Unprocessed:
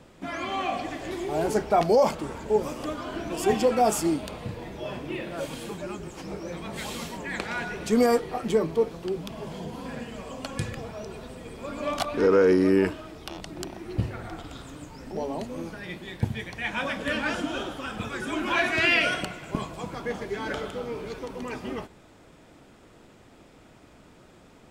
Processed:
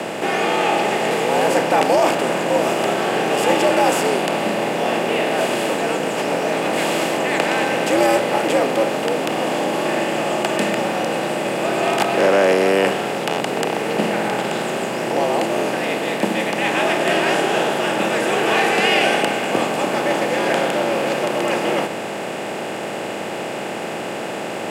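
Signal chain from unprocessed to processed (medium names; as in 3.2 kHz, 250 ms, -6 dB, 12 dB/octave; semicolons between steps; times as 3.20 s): spectral levelling over time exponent 0.4; frequency shift +100 Hz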